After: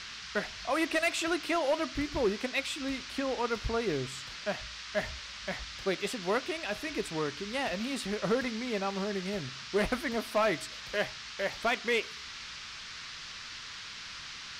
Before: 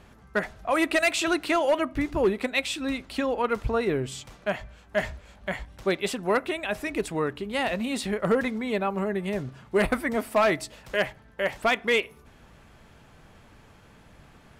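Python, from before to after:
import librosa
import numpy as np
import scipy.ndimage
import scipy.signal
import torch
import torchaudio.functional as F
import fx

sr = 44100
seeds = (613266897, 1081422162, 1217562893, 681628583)

y = fx.dmg_noise_band(x, sr, seeds[0], low_hz=1100.0, high_hz=5500.0, level_db=-38.0)
y = y * librosa.db_to_amplitude(-6.0)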